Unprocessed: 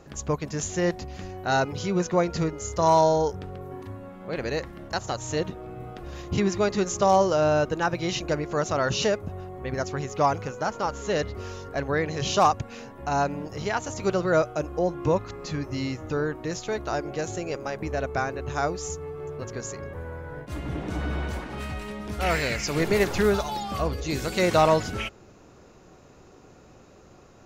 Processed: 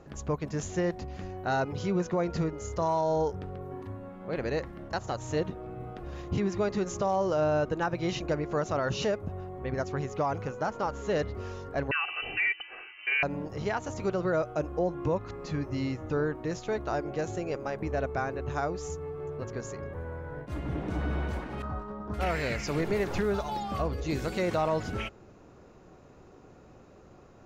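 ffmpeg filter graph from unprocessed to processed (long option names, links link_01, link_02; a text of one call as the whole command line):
ffmpeg -i in.wav -filter_complex "[0:a]asettb=1/sr,asplit=3[link_01][link_02][link_03];[link_01]atrim=end=11.914[link_04];[link_02]atrim=start=11.91:end=13.23,asetpts=PTS-STARTPTS,afade=type=in:duration=0.004:curve=qsin,afade=type=out:start_time=1.316:duration=0.004:curve=qsin,aecho=1:1:2.6:0.63,atrim=end_sample=58212,asplit=2[link_05][link_06];[link_06]highpass=frequency=720:poles=1,volume=8dB,asoftclip=type=tanh:threshold=-6.5dB[link_07];[link_05][link_07]amix=inputs=2:normalize=0,lowpass=frequency=2200:poles=1,volume=-6dB,lowpass=frequency=2600:width_type=q:width=0.5098,lowpass=frequency=2600:width_type=q:width=0.6013,lowpass=frequency=2600:width_type=q:width=0.9,lowpass=frequency=2600:width_type=q:width=2.563,afreqshift=-3100[link_08];[link_03]atrim=start=13.226[link_09];[link_04][link_08]acrossfade=duration=0.004:curve1=hsin:curve2=qsin[link_10];[link_10][link_09]acrossfade=duration=0.004:curve1=qsin:curve2=hsin,asettb=1/sr,asplit=3[link_11][link_12][link_13];[link_11]atrim=end=21.624[link_14];[link_12]atrim=start=21.62:end=22.14,asetpts=PTS-STARTPTS,afade=type=in:duration=0.004:curve=qsin,afade=type=out:start_time=0.516:duration=0.004:curve=qsin,lowpass=frequency=6600:width=0.5412,lowpass=frequency=6600:width=1.3066,agate=range=-33dB:threshold=-33dB:ratio=3:release=100:detection=peak,highshelf=frequency=1700:width_type=q:width=3:gain=-10.5[link_15];[link_13]atrim=start=22.136[link_16];[link_14][link_15]acrossfade=duration=0.004:curve1=hsin:curve2=qsin[link_17];[link_17][link_16]acrossfade=duration=0.004:curve1=qsin:curve2=hsin,highshelf=frequency=2900:gain=-9.5,alimiter=limit=-18dB:level=0:latency=1:release=116,volume=-1.5dB" out.wav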